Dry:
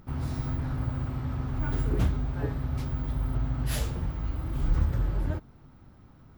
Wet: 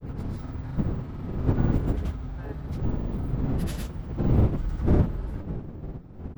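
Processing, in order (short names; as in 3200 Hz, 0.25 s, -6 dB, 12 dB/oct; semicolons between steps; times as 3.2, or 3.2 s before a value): wind noise 190 Hz -23 dBFS; grains, pitch spread up and down by 0 st; gain -3.5 dB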